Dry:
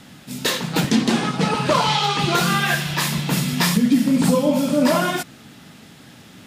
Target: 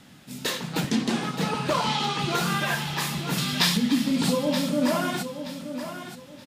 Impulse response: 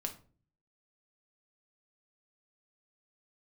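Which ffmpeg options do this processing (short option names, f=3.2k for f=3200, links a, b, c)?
-filter_complex "[0:a]asettb=1/sr,asplit=3[a][b][c];[a]atrim=end=3.384[d];[b]atrim=start=3.38:end=4.33,asetpts=PTS-STARTPTS,afade=t=in:d=0.004:c=qsin,afade=t=out:st=0.946:d=0.004:c=qsin,equalizer=f=3.8k:t=o:w=1.2:g=10[e];[c]atrim=start=4.326[f];[d][e]acrossfade=d=0.004:c1=hsin:c2=qsin[g];[g][f]acrossfade=d=0.004:c1=qsin:c2=hsin,asplit=2[h][i];[i]aecho=0:1:925|1850|2775:0.316|0.0854|0.0231[j];[h][j]amix=inputs=2:normalize=0,volume=-7dB"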